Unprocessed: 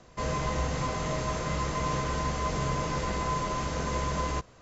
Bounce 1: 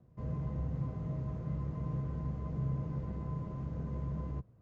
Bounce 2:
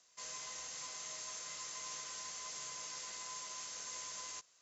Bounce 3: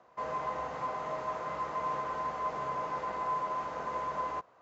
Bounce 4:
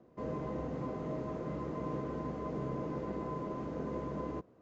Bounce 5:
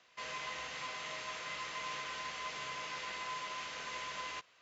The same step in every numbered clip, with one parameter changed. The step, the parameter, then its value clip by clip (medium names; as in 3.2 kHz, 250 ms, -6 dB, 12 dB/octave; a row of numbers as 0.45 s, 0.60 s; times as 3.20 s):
band-pass filter, frequency: 120 Hz, 7 kHz, 900 Hz, 310 Hz, 2.8 kHz